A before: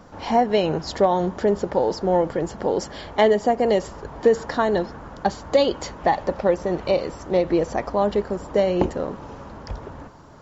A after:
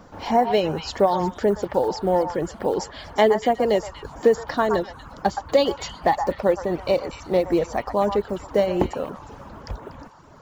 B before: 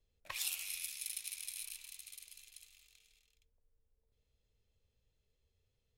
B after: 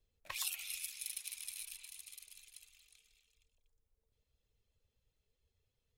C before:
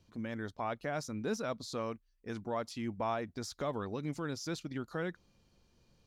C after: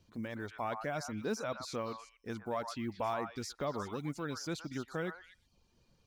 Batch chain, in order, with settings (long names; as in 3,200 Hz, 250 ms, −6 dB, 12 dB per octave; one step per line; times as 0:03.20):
one scale factor per block 7 bits
reverb reduction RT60 0.68 s
echo through a band-pass that steps 120 ms, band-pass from 1,100 Hz, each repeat 1.4 octaves, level −4 dB